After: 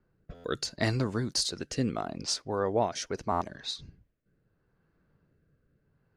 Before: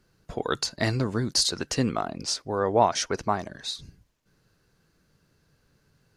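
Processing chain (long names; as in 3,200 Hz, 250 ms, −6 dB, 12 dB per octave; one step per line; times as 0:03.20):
low-pass that shuts in the quiet parts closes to 1,600 Hz, open at −25.5 dBFS
rotating-speaker cabinet horn 0.75 Hz
buffer that repeats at 0:00.34/0:03.31, samples 512, times 8
level −2 dB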